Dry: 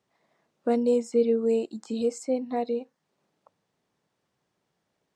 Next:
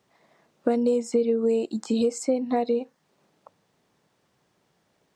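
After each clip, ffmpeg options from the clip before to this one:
ffmpeg -i in.wav -af "acompressor=threshold=-28dB:ratio=6,volume=8.5dB" out.wav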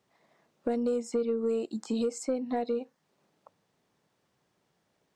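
ffmpeg -i in.wav -af "asoftclip=type=tanh:threshold=-13.5dB,volume=-5.5dB" out.wav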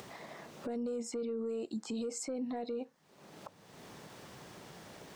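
ffmpeg -i in.wav -af "acompressor=mode=upward:threshold=-32dB:ratio=2.5,alimiter=level_in=7dB:limit=-24dB:level=0:latency=1:release=16,volume=-7dB" out.wav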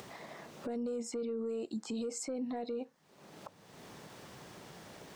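ffmpeg -i in.wav -af anull out.wav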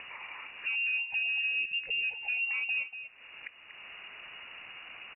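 ffmpeg -i in.wav -filter_complex "[0:a]lowpass=frequency=2600:width_type=q:width=0.5098,lowpass=frequency=2600:width_type=q:width=0.6013,lowpass=frequency=2600:width_type=q:width=0.9,lowpass=frequency=2600:width_type=q:width=2.563,afreqshift=-3000,asplit=2[link_01][link_02];[link_02]adelay=239.1,volume=-9dB,highshelf=frequency=4000:gain=-5.38[link_03];[link_01][link_03]amix=inputs=2:normalize=0,volume=5dB" out.wav

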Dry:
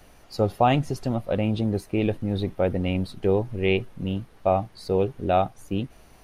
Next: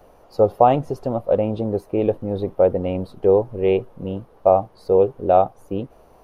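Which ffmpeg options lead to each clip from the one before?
ffmpeg -i in.wav -af "equalizer=frequency=500:width_type=o:width=1:gain=11,equalizer=frequency=1000:width_type=o:width=1:gain=7,equalizer=frequency=2000:width_type=o:width=1:gain=-6,equalizer=frequency=4000:width_type=o:width=1:gain=-4,equalizer=frequency=8000:width_type=o:width=1:gain=-7,volume=-2.5dB" out.wav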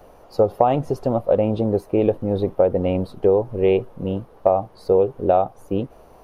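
ffmpeg -i in.wav -af "acompressor=threshold=-15dB:ratio=6,volume=3dB" out.wav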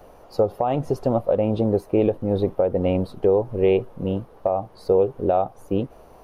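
ffmpeg -i in.wav -af "alimiter=limit=-9dB:level=0:latency=1:release=249" out.wav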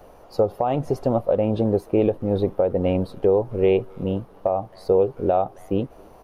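ffmpeg -i in.wav -filter_complex "[0:a]asplit=2[link_01][link_02];[link_02]adelay=270,highpass=300,lowpass=3400,asoftclip=type=hard:threshold=-19dB,volume=-25dB[link_03];[link_01][link_03]amix=inputs=2:normalize=0" out.wav

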